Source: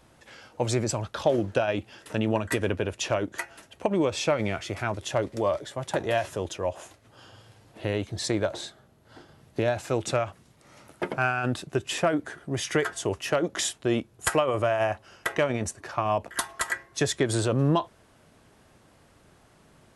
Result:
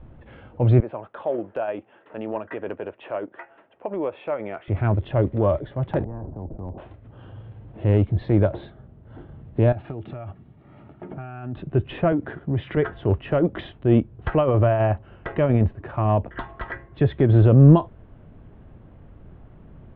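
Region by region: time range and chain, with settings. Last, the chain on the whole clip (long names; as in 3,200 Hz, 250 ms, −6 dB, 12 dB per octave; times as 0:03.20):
0:00.80–0:04.68: high-pass filter 580 Hz + high-frequency loss of the air 390 metres
0:06.04–0:06.78: transistor ladder low-pass 300 Hz, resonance 30% + every bin compressed towards the loudest bin 10 to 1
0:09.72–0:11.57: high-pass filter 120 Hz 6 dB per octave + downward compressor 16 to 1, threshold −34 dBFS + notch comb filter 510 Hz
0:12.12–0:12.77: leveller curve on the samples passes 1 + downward compressor, threshold −28 dBFS + high-pass filter 87 Hz
whole clip: Butterworth low-pass 3,500 Hz 48 dB per octave; spectral tilt −4.5 dB per octave; transient designer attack −5 dB, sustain −1 dB; level +1.5 dB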